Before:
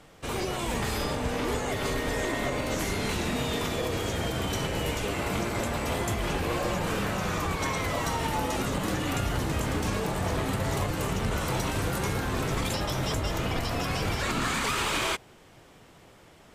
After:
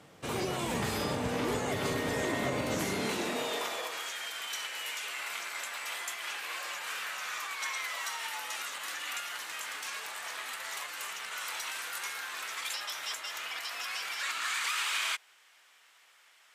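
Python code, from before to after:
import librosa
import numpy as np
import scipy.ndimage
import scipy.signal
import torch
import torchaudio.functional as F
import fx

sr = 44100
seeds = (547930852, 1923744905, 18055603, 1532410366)

y = fx.filter_sweep_highpass(x, sr, from_hz=120.0, to_hz=1600.0, start_s=2.74, end_s=4.16, q=0.99)
y = F.gain(torch.from_numpy(y), -2.5).numpy()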